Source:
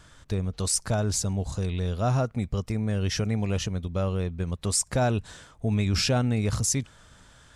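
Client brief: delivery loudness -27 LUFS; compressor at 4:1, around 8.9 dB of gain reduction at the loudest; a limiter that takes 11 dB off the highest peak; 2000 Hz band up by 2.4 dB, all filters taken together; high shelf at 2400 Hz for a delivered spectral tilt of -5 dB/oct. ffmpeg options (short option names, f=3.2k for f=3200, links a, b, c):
-af "equalizer=f=2k:t=o:g=8,highshelf=f=2.4k:g=-9,acompressor=threshold=-31dB:ratio=4,volume=11.5dB,alimiter=limit=-17dB:level=0:latency=1"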